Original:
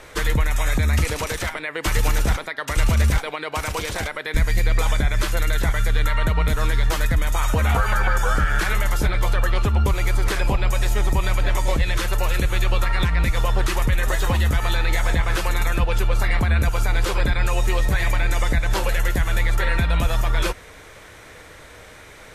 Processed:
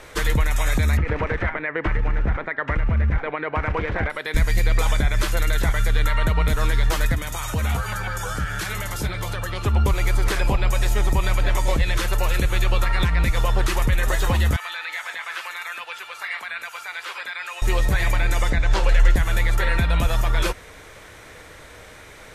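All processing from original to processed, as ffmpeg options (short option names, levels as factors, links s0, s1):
-filter_complex "[0:a]asettb=1/sr,asplit=3[s0][s1][s2];[s0]atrim=end=0.974[s3];[s1]atrim=start=0.97:end=4.1,asetpts=PTS-STARTPTS,afade=t=in:d=0.004:c=qsin,afade=t=out:st=3.126:d=0.004:c=qsin,tiltshelf=f=800:g=5,acompressor=threshold=0.141:ratio=5:attack=3.2:release=140:knee=1:detection=peak,lowpass=f=1900:t=q:w=2.1[s4];[s2]atrim=start=4.096[s5];[s3][s4]acrossfade=d=0.004:c1=hsin:c2=qsin[s6];[s6][s5]acrossfade=d=0.004:c1=qsin:c2=hsin,asettb=1/sr,asplit=3[s7][s8][s9];[s7]atrim=end=7.144[s10];[s8]atrim=start=7.14:end=9.66,asetpts=PTS-STARTPTS,afade=t=in:d=0.004:c=qsin,afade=t=out:st=2.516:d=0.004:c=qsin,highpass=77,acrossover=split=200|3000[s11][s12][s13];[s12]acompressor=threshold=0.0316:ratio=3:attack=3.2:release=140:knee=2.83:detection=peak[s14];[s11][s14][s13]amix=inputs=3:normalize=0[s15];[s9]atrim=start=9.656[s16];[s10][s15]acrossfade=d=0.004:c1=hsin:c2=qsin[s17];[s17][s16]acrossfade=d=0.004:c1=qsin:c2=hsin,asettb=1/sr,asplit=3[s18][s19][s20];[s18]atrim=end=14.564[s21];[s19]atrim=start=14.56:end=17.62,asetpts=PTS-STARTPTS,afade=t=in:d=0.004:c=qsin,afade=t=out:st=3.056:d=0.004:c=qsin,highpass=1400,acrossover=split=3400[s22][s23];[s23]acompressor=threshold=0.00562:ratio=4:attack=1:release=60[s24];[s22][s24]amix=inputs=2:normalize=0[s25];[s20]atrim=start=17.616[s26];[s21][s25]acrossfade=d=0.004:c1=hsin:c2=qsin[s27];[s27][s26]acrossfade=d=0.004:c1=qsin:c2=hsin,asettb=1/sr,asplit=3[s28][s29][s30];[s28]atrim=end=18.504[s31];[s29]atrim=start=18.5:end=19.16,asetpts=PTS-STARTPTS,afade=t=in:d=0.004:c=qsin,afade=t=out:st=0.656:d=0.004:c=qsin,lowpass=6300,asubboost=boost=10:cutoff=78,bandreject=f=60:t=h:w=6,bandreject=f=120:t=h:w=6,bandreject=f=180:t=h:w=6,bandreject=f=240:t=h:w=6,bandreject=f=300:t=h:w=6,bandreject=f=360:t=h:w=6,bandreject=f=420:t=h:w=6,bandreject=f=480:t=h:w=6[s32];[s30]atrim=start=19.156[s33];[s31][s32]acrossfade=d=0.004:c1=hsin:c2=qsin[s34];[s34][s33]acrossfade=d=0.004:c1=qsin:c2=hsin"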